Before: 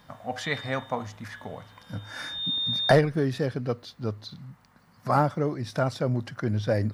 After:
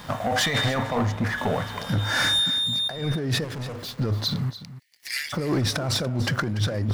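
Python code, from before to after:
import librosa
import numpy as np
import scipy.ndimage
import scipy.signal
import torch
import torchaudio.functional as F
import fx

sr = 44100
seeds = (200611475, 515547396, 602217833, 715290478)

y = fx.high_shelf(x, sr, hz=2400.0, db=-11.0, at=(0.78, 1.38))
y = fx.steep_highpass(y, sr, hz=1800.0, slope=96, at=(4.49, 5.32), fade=0.02)
y = fx.over_compress(y, sr, threshold_db=-34.0, ratio=-1.0)
y = fx.leveller(y, sr, passes=3)
y = fx.overload_stage(y, sr, gain_db=33.0, at=(3.44, 3.99))
y = y + 10.0 ** (-14.5 / 20.0) * np.pad(y, (int(289 * sr / 1000.0), 0))[:len(y)]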